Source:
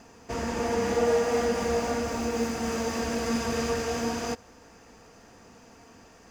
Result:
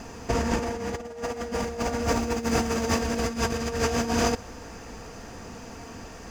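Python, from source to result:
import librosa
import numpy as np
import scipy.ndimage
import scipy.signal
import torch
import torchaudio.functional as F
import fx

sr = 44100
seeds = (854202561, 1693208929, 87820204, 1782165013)

y = fx.low_shelf(x, sr, hz=95.0, db=9.0)
y = fx.over_compress(y, sr, threshold_db=-31.0, ratio=-0.5)
y = y * 10.0 ** (5.0 / 20.0)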